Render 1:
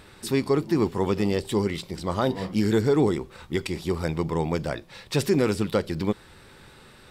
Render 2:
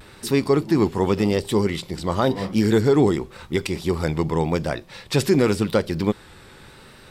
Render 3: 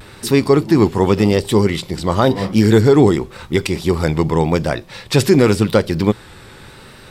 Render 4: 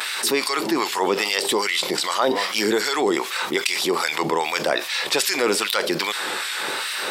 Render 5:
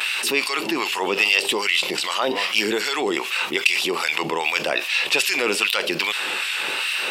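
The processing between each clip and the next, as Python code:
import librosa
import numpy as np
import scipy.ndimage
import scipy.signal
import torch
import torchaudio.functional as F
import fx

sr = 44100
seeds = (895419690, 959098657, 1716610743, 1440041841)

y1 = fx.vibrato(x, sr, rate_hz=0.9, depth_cents=44.0)
y1 = F.gain(torch.from_numpy(y1), 4.0).numpy()
y2 = fx.peak_eq(y1, sr, hz=110.0, db=4.0, octaves=0.29)
y2 = F.gain(torch.from_numpy(y2), 6.0).numpy()
y3 = fx.filter_lfo_highpass(y2, sr, shape='sine', hz=2.5, low_hz=360.0, high_hz=2100.0, q=0.72)
y3 = scipy.signal.sosfilt(scipy.signal.butter(2, 190.0, 'highpass', fs=sr, output='sos'), y3)
y3 = fx.env_flatten(y3, sr, amount_pct=70)
y3 = F.gain(torch.from_numpy(y3), -4.0).numpy()
y4 = fx.peak_eq(y3, sr, hz=2700.0, db=14.5, octaves=0.39)
y4 = F.gain(torch.from_numpy(y4), -3.0).numpy()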